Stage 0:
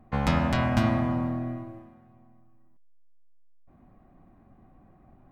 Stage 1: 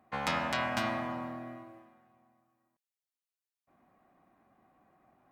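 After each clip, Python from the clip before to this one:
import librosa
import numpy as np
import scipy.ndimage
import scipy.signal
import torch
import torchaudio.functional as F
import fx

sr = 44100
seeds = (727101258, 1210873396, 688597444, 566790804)

y = fx.highpass(x, sr, hz=990.0, slope=6)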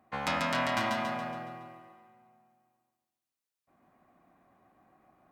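y = fx.echo_feedback(x, sr, ms=140, feedback_pct=48, wet_db=-3)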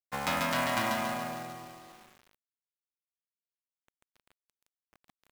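y = fx.quant_companded(x, sr, bits=4)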